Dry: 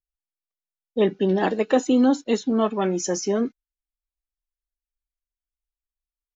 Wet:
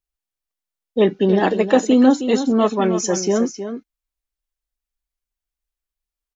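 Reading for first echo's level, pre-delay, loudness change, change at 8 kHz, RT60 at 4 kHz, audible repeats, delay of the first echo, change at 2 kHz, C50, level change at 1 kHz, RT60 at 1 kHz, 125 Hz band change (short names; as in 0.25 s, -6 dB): -10.0 dB, none, +5.0 dB, n/a, none, 1, 0.315 s, +5.0 dB, none, +5.0 dB, none, +5.0 dB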